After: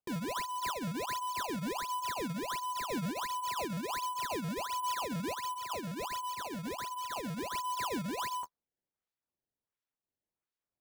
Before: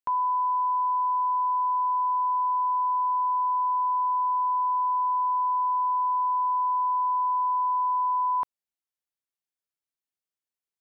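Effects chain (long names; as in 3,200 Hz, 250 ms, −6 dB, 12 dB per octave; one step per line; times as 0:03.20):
flanger 0.65 Hz, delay 7 ms, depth 5.7 ms, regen −22%
soft clipping −31 dBFS, distortion −12 dB
0:05.54–0:07.55: high-pass filter 940 Hz 6 dB per octave
sample-and-hold swept by an LFO 21×, swing 160% 1.4 Hz
amplitude modulation by smooth noise, depth 50%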